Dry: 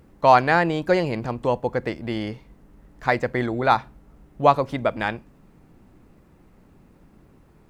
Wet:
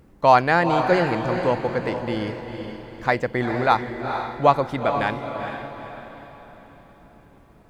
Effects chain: echo that smears into a reverb 451 ms, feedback 45%, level -7 dB

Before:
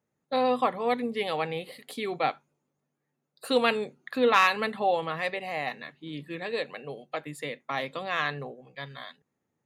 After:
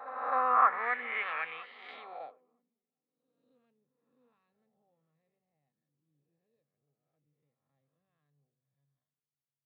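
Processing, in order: reverse spectral sustain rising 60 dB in 0.88 s; band-pass sweep 1.1 kHz -> 4.2 kHz, 0.31–2.07 s; on a send: shuffle delay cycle 960 ms, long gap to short 3:1, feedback 40%, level -22.5 dB; on the sum: low-pass sweep 1.6 kHz -> 110 Hz, 1.89–2.87 s; pre-echo 263 ms -13 dB

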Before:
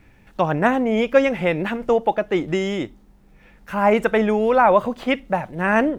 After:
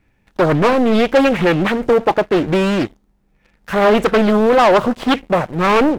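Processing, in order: waveshaping leveller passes 3; loudspeaker Doppler distortion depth 0.68 ms; trim -2.5 dB

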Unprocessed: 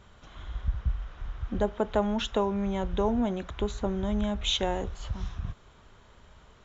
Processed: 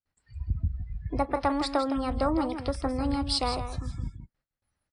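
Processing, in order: gate with hold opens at -44 dBFS; spectral noise reduction 27 dB; speed mistake 33 rpm record played at 45 rpm; on a send: delay 163 ms -9.5 dB

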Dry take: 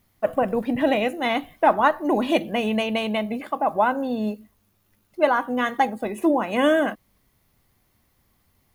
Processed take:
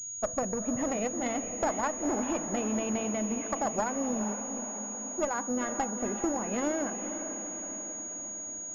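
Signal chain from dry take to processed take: tilt EQ -2 dB/octave; compression 4:1, threshold -24 dBFS, peak gain reduction 11 dB; Chebyshev shaper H 2 -11 dB, 6 -19 dB, 8 -20 dB, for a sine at -13 dBFS; echo that smears into a reverb 459 ms, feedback 61%, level -8.5 dB; class-D stage that switches slowly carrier 6.7 kHz; trim -5 dB

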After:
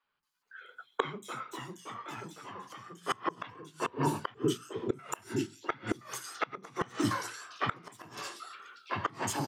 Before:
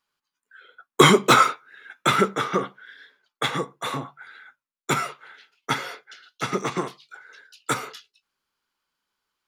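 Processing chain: 3.50–4.99 s: FFT filter 240 Hz 0 dB, 410 Hz +11 dB, 770 Hz -17 dB, 3 kHz -16 dB, 9.3 kHz -2 dB; ever faster or slower copies 412 ms, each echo -2 st, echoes 2; three bands offset in time mids, lows, highs 40/230 ms, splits 310/3800 Hz; inverted gate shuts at -17 dBFS, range -25 dB

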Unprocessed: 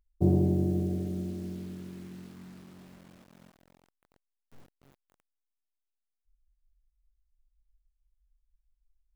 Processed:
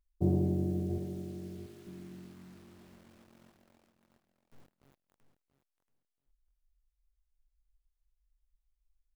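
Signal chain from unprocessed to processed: 0.98–1.87 s: high-pass 670 Hz 6 dB/octave; feedback delay 682 ms, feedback 18%, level -11.5 dB; trim -4.5 dB

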